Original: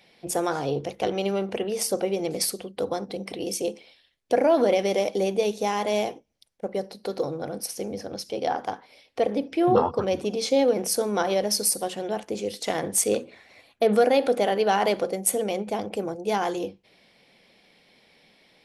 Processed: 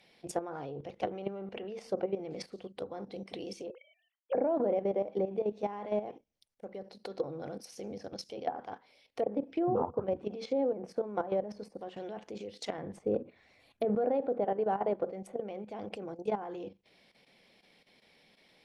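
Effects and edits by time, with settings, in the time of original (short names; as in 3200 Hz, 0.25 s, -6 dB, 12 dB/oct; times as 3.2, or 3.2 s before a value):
3.7–4.35 sine-wave speech
12.78–13.85 low shelf 200 Hz +9 dB
whole clip: treble ducked by the level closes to 920 Hz, closed at -20 dBFS; level quantiser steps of 12 dB; gain -4.5 dB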